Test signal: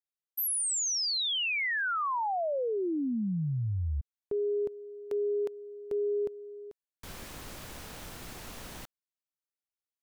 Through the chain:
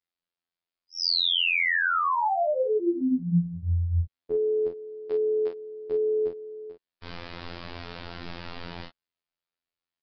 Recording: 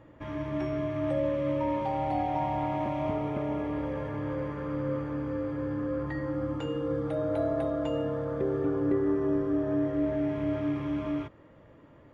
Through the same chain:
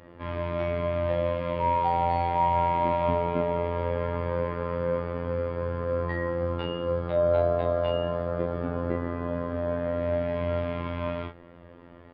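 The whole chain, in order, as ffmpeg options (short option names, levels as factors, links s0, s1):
-af "aecho=1:1:29|45:0.631|0.355,aresample=11025,aresample=44100,afftfilt=real='hypot(re,im)*cos(PI*b)':imag='0':win_size=2048:overlap=0.75,volume=2.37"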